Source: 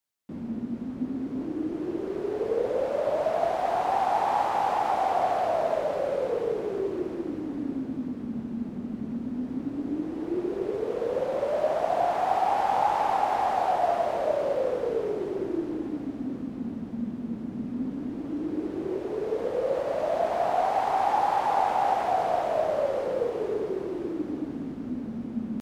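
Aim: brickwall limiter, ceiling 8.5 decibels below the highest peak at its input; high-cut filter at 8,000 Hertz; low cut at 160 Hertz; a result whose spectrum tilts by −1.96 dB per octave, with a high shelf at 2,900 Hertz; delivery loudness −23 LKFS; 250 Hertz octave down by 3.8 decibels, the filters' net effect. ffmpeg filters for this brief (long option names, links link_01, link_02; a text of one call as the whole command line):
ffmpeg -i in.wav -af "highpass=160,lowpass=8000,equalizer=frequency=250:width_type=o:gain=-4,highshelf=frequency=2900:gain=-5,volume=9dB,alimiter=limit=-13dB:level=0:latency=1" out.wav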